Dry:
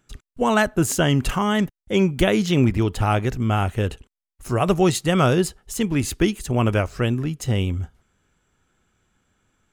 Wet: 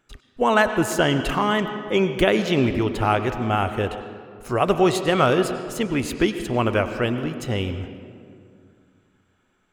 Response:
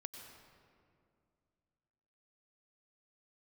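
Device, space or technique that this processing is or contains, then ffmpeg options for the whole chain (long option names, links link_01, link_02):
filtered reverb send: -filter_complex "[0:a]asplit=2[link_01][link_02];[link_02]highpass=260,lowpass=4400[link_03];[1:a]atrim=start_sample=2205[link_04];[link_03][link_04]afir=irnorm=-1:irlink=0,volume=6dB[link_05];[link_01][link_05]amix=inputs=2:normalize=0,volume=-4.5dB"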